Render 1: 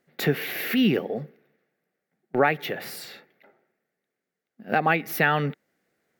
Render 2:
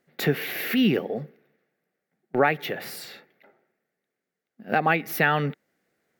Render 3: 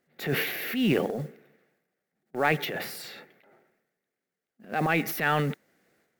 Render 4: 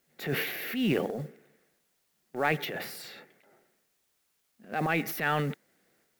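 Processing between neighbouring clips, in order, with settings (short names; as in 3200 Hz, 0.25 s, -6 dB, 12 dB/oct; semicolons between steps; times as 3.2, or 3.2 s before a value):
nothing audible
transient shaper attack -8 dB, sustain +9 dB; modulation noise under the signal 27 dB; gain -3 dB
requantised 12-bit, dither triangular; gain -3 dB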